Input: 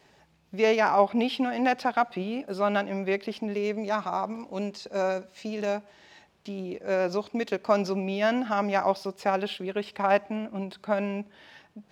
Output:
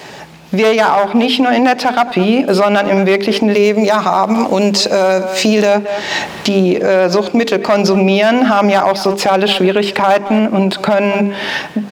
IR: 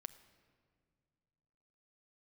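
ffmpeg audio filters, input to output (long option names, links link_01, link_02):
-filter_complex "[0:a]aeval=exprs='clip(val(0),-1,0.112)':channel_layout=same,highpass=120,bandreject=frequency=50:width_type=h:width=6,bandreject=frequency=100:width_type=h:width=6,bandreject=frequency=150:width_type=h:width=6,bandreject=frequency=200:width_type=h:width=6,bandreject=frequency=250:width_type=h:width=6,bandreject=frequency=300:width_type=h:width=6,bandreject=frequency=350:width_type=h:width=6,bandreject=frequency=400:width_type=h:width=6,bandreject=frequency=450:width_type=h:width=6,asplit=2[link_01][link_02];[link_02]adelay=220,highpass=300,lowpass=3400,asoftclip=type=hard:threshold=-20.5dB,volume=-18dB[link_03];[link_01][link_03]amix=inputs=2:normalize=0,dynaudnorm=framelen=650:gausssize=5:maxgain=13dB,asettb=1/sr,asplit=3[link_04][link_05][link_06];[link_04]atrim=end=3.554[link_07];[link_05]atrim=start=3.55:end=5.68,asetpts=PTS-STARTPTS,afade=type=in:duration=0.004:curve=qsin,afade=type=out:start_time=2.126:duration=0.004:curve=qsin,highshelf=frequency=6000:gain=6[link_08];[link_06]atrim=start=5.676[link_09];[link_07][link_08]acrossfade=duration=0.004:curve1=hsin:curve2=qsin[link_10];[link_10][link_09]acrossfade=duration=0.004:curve1=qsin:curve2=hsin,acompressor=threshold=-41dB:ratio=3,alimiter=level_in=29dB:limit=-1dB:release=50:level=0:latency=1,volume=-1dB"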